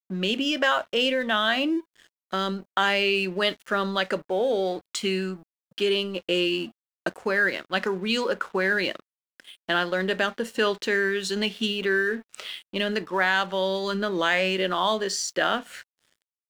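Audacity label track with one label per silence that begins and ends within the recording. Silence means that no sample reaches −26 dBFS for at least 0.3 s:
1.790000	2.330000	silence
5.320000	5.780000	silence
6.650000	7.060000	silence
8.960000	9.690000	silence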